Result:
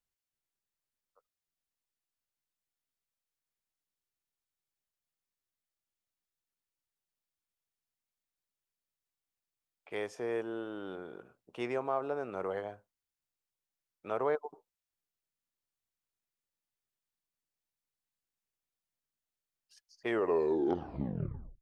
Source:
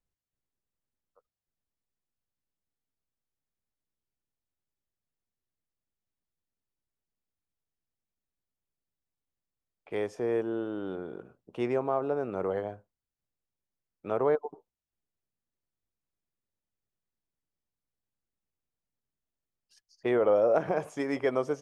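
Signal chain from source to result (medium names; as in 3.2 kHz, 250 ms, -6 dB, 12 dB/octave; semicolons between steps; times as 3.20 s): tape stop on the ending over 1.58 s; tilt shelf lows -5 dB, about 670 Hz; trim -4 dB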